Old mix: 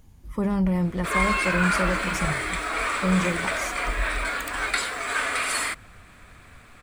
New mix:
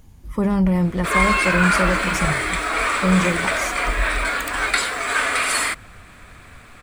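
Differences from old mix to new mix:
speech +5.0 dB
background +5.5 dB

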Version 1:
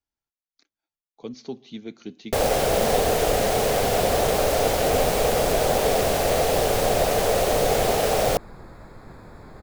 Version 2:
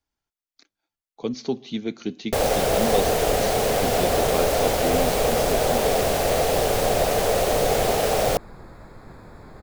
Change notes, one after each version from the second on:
speech +8.0 dB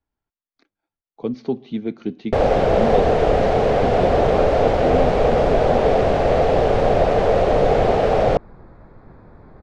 speech +4.0 dB
first sound +7.0 dB
master: add head-to-tape spacing loss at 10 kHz 35 dB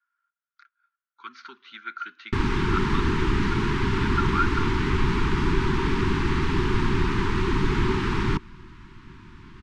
speech: add high-pass with resonance 1,400 Hz, resonance Q 13
second sound: remove moving average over 15 samples
master: add Chebyshev band-stop filter 380–930 Hz, order 4

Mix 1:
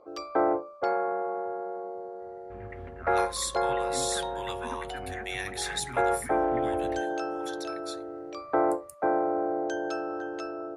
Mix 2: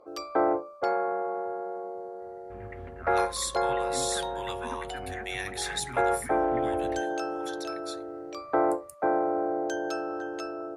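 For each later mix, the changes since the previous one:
first sound: remove high-frequency loss of the air 61 metres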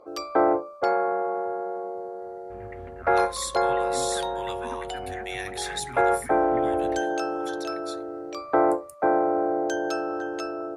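first sound +4.0 dB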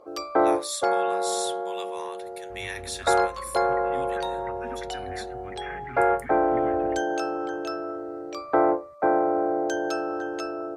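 speech: entry −2.70 s

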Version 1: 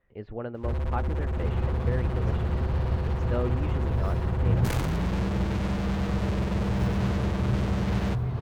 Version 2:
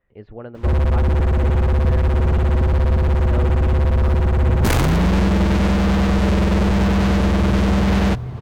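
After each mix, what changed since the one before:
first sound +12.0 dB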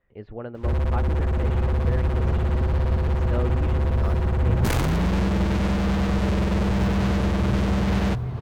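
first sound −6.0 dB

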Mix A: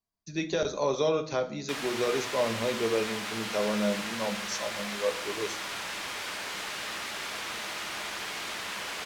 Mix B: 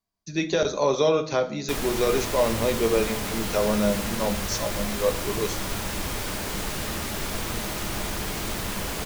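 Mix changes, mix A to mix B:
speech +5.5 dB
background: remove resonant band-pass 2,300 Hz, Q 0.61

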